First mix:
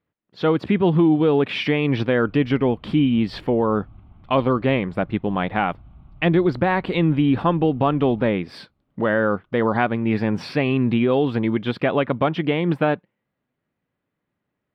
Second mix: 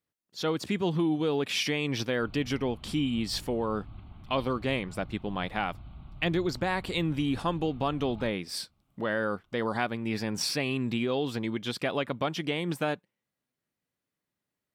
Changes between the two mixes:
speech -11.5 dB; master: remove air absorption 450 m

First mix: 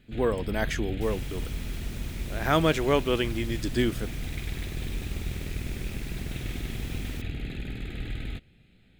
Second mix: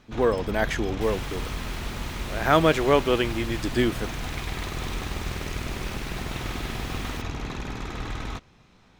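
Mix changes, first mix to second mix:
first sound: remove fixed phaser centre 2500 Hz, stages 4; second sound: add bell 2400 Hz +10 dB 2.3 oct; master: add bell 870 Hz +5.5 dB 2.8 oct

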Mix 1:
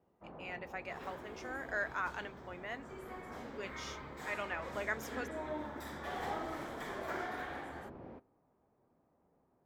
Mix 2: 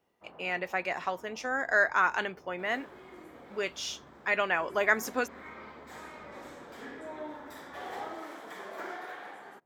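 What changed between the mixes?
speech +12.0 dB; first sound: add tilt +2.5 dB/oct; second sound: entry +1.70 s

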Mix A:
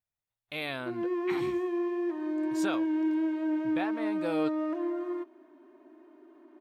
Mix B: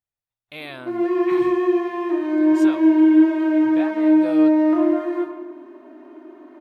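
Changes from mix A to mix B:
background +7.0 dB; reverb: on, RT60 1.0 s

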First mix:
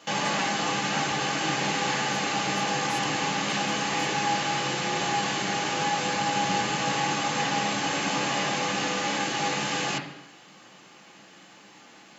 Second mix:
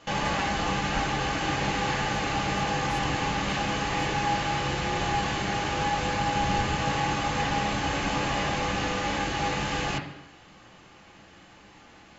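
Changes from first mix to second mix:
background: remove HPF 150 Hz 24 dB/oct; master: add high shelf 4700 Hz -9.5 dB

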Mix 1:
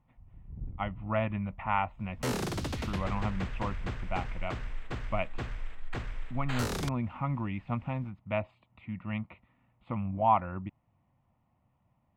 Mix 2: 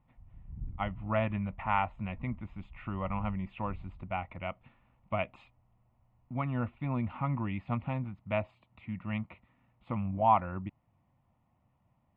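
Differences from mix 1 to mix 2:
first sound: add Gaussian blur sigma 23 samples; second sound: muted

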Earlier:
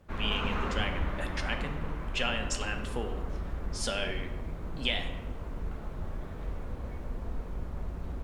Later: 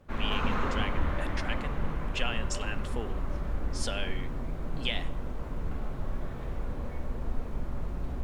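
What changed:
speech: send -11.5 dB; background: send on

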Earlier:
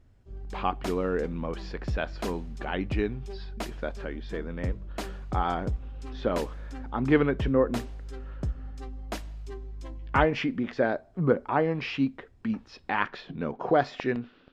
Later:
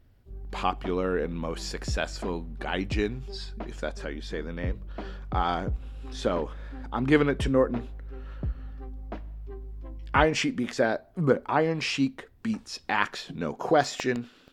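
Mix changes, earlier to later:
speech: remove air absorption 280 m; background: add tape spacing loss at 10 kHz 44 dB

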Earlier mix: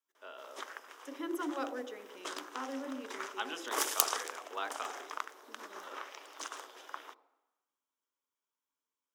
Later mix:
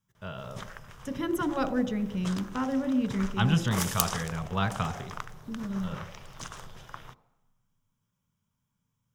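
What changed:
speech +7.0 dB; master: remove Chebyshev high-pass 280 Hz, order 6

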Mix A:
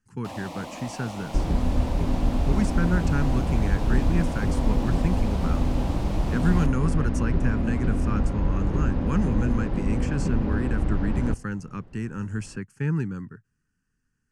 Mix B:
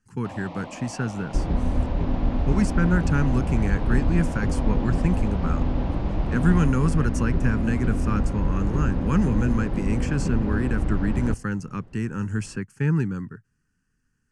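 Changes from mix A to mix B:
speech +3.5 dB; first sound: add air absorption 250 m

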